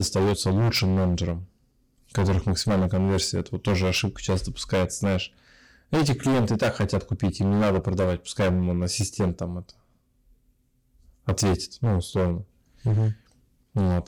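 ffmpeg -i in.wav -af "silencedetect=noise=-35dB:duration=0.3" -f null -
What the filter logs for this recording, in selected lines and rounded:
silence_start: 1.43
silence_end: 2.15 | silence_duration: 0.72
silence_start: 5.27
silence_end: 5.93 | silence_duration: 0.66
silence_start: 9.69
silence_end: 11.28 | silence_duration: 1.58
silence_start: 12.42
silence_end: 12.85 | silence_duration: 0.43
silence_start: 13.13
silence_end: 13.75 | silence_duration: 0.63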